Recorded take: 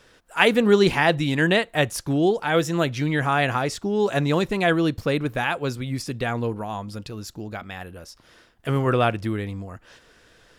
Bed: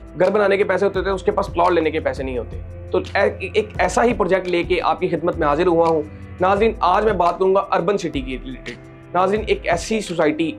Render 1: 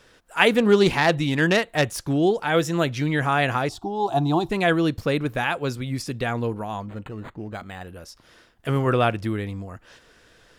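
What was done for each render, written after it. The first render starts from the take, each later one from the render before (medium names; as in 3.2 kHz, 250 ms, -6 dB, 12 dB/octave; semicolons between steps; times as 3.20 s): 0.58–2.15 s: self-modulated delay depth 0.071 ms; 3.69–4.50 s: FFT filter 150 Hz 0 dB, 220 Hz -9 dB, 330 Hz +6 dB, 520 Hz -18 dB, 740 Hz +12 dB, 2 kHz -21 dB, 3.6 kHz -2 dB, 6.4 kHz -9 dB, 13 kHz -5 dB; 6.80–7.88 s: decimation joined by straight lines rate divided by 8×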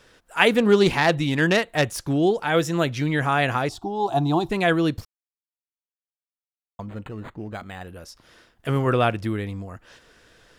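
5.05–6.79 s: mute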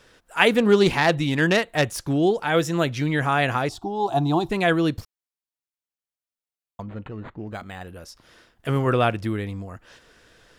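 6.82–7.47 s: distance through air 130 m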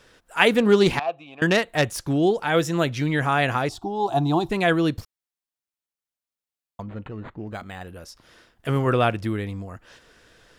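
0.99–1.42 s: vowel filter a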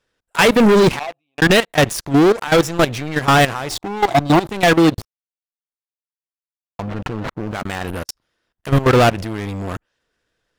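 level held to a coarse grid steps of 21 dB; waveshaping leveller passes 5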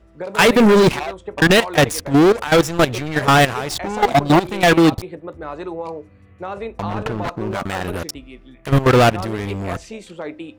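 add bed -13 dB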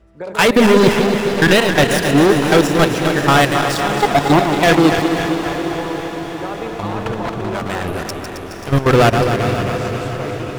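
backward echo that repeats 134 ms, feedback 78%, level -7 dB; echo that smears into a reverb 503 ms, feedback 70%, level -11.5 dB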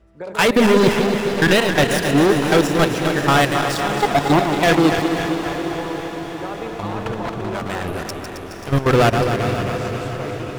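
trim -3 dB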